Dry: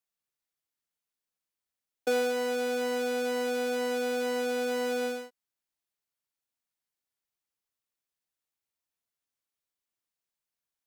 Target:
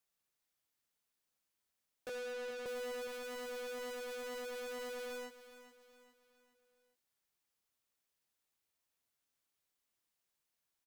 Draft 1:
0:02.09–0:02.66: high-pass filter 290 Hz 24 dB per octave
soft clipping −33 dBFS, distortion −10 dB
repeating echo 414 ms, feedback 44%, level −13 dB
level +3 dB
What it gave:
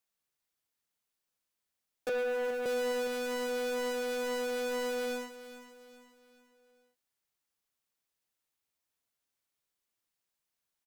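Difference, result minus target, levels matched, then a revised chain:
soft clipping: distortion −5 dB
0:02.09–0:02.66: high-pass filter 290 Hz 24 dB per octave
soft clipping −45 dBFS, distortion −5 dB
repeating echo 414 ms, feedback 44%, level −13 dB
level +3 dB

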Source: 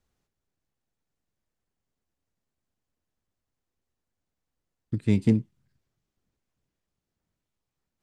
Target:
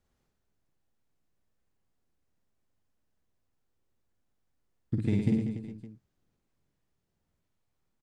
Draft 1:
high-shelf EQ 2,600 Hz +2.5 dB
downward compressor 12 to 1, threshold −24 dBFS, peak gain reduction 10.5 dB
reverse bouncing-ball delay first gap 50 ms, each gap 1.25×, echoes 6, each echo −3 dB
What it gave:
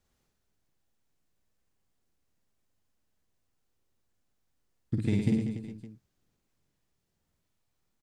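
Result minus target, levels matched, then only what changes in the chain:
4,000 Hz band +4.0 dB
change: high-shelf EQ 2,600 Hz −4 dB

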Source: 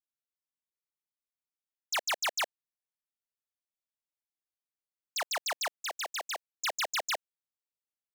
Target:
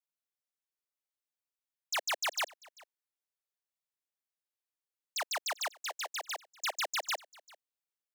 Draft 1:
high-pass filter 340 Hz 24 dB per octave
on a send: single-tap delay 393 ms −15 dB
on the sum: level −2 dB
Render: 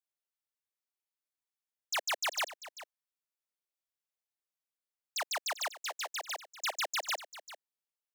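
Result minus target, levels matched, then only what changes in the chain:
echo-to-direct +8.5 dB
change: single-tap delay 393 ms −23.5 dB

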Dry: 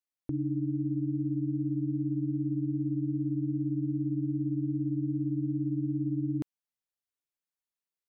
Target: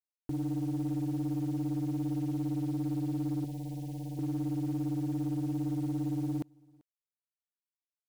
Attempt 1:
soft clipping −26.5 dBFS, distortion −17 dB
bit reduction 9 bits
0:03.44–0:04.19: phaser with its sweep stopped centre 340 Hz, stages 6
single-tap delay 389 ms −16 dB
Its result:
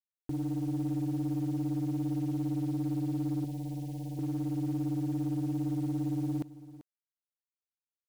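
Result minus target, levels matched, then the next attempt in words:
echo-to-direct +12 dB
soft clipping −26.5 dBFS, distortion −17 dB
bit reduction 9 bits
0:03.44–0:04.19: phaser with its sweep stopped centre 340 Hz, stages 6
single-tap delay 389 ms −28 dB

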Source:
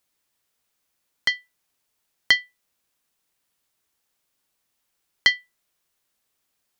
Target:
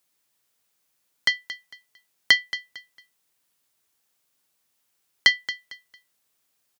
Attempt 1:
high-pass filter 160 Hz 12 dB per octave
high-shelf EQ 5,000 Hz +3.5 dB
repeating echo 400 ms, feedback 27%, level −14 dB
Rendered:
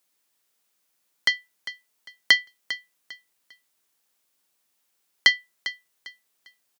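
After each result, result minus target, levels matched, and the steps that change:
echo 174 ms late; 125 Hz band −4.0 dB
change: repeating echo 226 ms, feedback 27%, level −14 dB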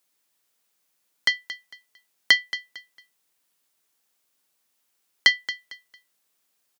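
125 Hz band −4.5 dB
change: high-pass filter 71 Hz 12 dB per octave

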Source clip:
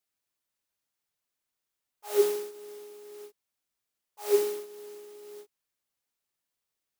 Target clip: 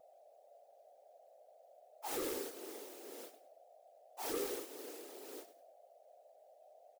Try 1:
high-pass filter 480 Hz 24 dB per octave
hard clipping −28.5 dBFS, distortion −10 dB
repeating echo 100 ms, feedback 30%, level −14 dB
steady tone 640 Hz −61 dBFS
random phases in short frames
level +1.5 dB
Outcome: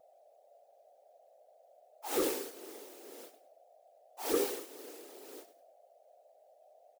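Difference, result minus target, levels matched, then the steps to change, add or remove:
hard clipping: distortion −7 dB
change: hard clipping −39 dBFS, distortion −2 dB

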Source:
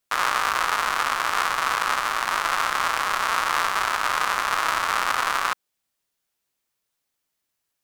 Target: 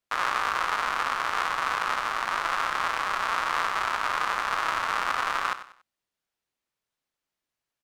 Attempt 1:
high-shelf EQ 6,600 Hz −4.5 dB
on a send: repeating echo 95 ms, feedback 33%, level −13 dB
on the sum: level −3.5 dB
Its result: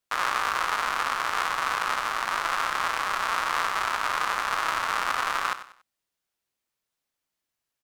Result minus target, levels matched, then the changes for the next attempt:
8,000 Hz band +3.5 dB
change: high-shelf EQ 6,600 Hz −12 dB

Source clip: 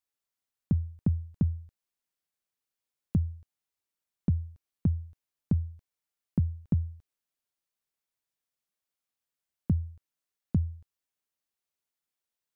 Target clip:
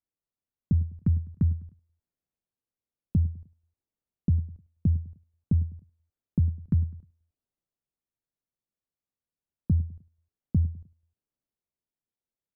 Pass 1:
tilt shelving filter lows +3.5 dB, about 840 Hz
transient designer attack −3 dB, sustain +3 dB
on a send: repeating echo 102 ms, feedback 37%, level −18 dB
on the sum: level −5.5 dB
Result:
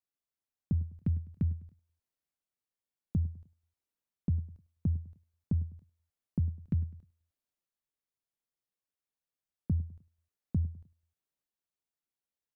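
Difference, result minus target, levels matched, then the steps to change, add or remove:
1,000 Hz band +5.0 dB
change: tilt shelving filter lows +10.5 dB, about 840 Hz

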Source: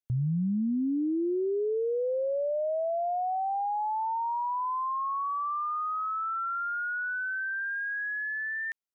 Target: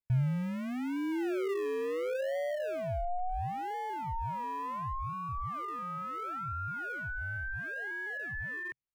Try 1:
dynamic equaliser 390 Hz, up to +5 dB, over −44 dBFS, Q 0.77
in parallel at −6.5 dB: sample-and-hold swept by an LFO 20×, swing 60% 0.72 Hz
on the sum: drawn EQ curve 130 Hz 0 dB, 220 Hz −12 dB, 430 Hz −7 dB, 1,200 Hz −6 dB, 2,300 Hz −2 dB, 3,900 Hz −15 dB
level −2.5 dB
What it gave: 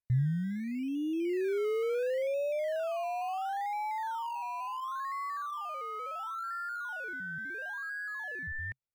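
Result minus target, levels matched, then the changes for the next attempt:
sample-and-hold swept by an LFO: distortion −13 dB
change: sample-and-hold swept by an LFO 48×, swing 60% 0.72 Hz

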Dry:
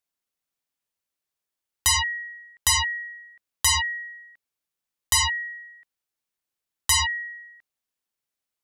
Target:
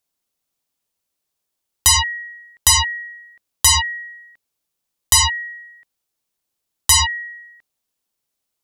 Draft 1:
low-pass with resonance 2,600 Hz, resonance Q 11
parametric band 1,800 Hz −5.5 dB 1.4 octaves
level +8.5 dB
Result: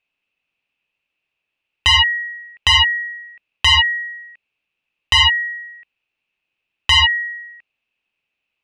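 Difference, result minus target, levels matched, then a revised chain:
2,000 Hz band +6.0 dB
parametric band 1,800 Hz −5.5 dB 1.4 octaves
level +8.5 dB

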